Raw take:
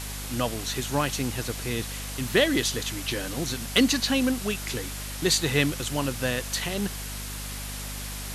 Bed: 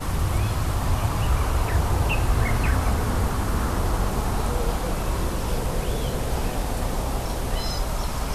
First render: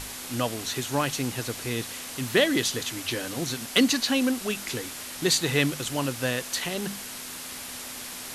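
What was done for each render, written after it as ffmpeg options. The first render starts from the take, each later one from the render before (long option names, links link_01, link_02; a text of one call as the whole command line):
ffmpeg -i in.wav -af "bandreject=frequency=50:width_type=h:width=6,bandreject=frequency=100:width_type=h:width=6,bandreject=frequency=150:width_type=h:width=6,bandreject=frequency=200:width_type=h:width=6" out.wav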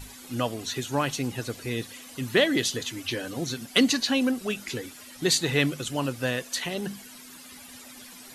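ffmpeg -i in.wav -af "afftdn=noise_reduction=13:noise_floor=-38" out.wav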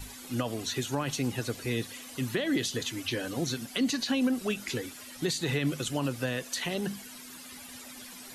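ffmpeg -i in.wav -filter_complex "[0:a]alimiter=limit=-18dB:level=0:latency=1:release=51,acrossover=split=310[link_01][link_02];[link_02]acompressor=threshold=-29dB:ratio=6[link_03];[link_01][link_03]amix=inputs=2:normalize=0" out.wav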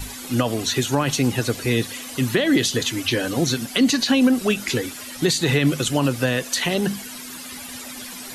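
ffmpeg -i in.wav -af "volume=10.5dB" out.wav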